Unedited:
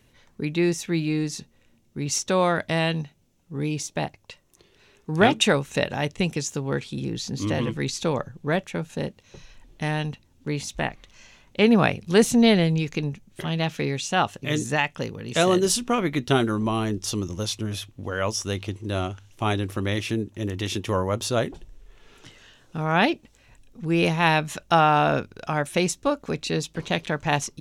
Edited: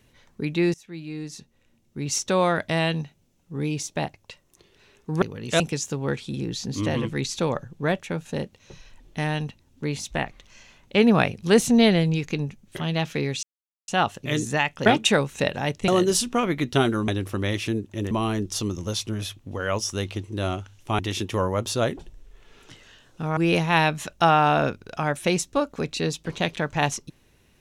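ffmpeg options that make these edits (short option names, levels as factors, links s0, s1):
-filter_complex "[0:a]asplit=11[s0][s1][s2][s3][s4][s5][s6][s7][s8][s9][s10];[s0]atrim=end=0.74,asetpts=PTS-STARTPTS,afade=t=out:st=0.736:d=0.004:c=hsin:silence=0.1[s11];[s1]atrim=start=0.74:end=5.222,asetpts=PTS-STARTPTS,afade=t=in:d=1.48:silence=0.1[s12];[s2]atrim=start=15.048:end=15.432[s13];[s3]atrim=start=6.238:end=14.07,asetpts=PTS-STARTPTS,afade=t=out:st=7.828:d=0.004:c=hsin,apad=pad_dur=0.45[s14];[s4]atrim=start=14.07:end=15.052,asetpts=PTS-STARTPTS,afade=t=in:d=0.004:c=hsin[s15];[s5]atrim=start=5.218:end=6.242[s16];[s6]atrim=start=15.428:end=16.632[s17];[s7]atrim=start=19.508:end=20.542[s18];[s8]atrim=start=16.628:end=19.512[s19];[s9]atrim=start=20.538:end=22.922[s20];[s10]atrim=start=23.868[s21];[s11][s12]concat=n=2:v=0:a=1[s22];[s22][s13]acrossfade=d=0.004:c1=hsin:c2=hsin[s23];[s14][s15]concat=n=2:v=0:a=1[s24];[s23][s24]acrossfade=d=0.004:c1=hsin:c2=hsin[s25];[s25][s16]acrossfade=d=0.004:c1=hsin:c2=hsin[s26];[s26][s17]acrossfade=d=0.004:c1=hsin:c2=hsin[s27];[s27][s18]acrossfade=d=0.004:c1=hsin:c2=hsin[s28];[s28][s19]acrossfade=d=0.004:c1=hsin:c2=hsin[s29];[s29][s20]acrossfade=d=0.004:c1=hsin:c2=hsin[s30];[s30][s21]acrossfade=d=0.004:c1=hsin:c2=hsin"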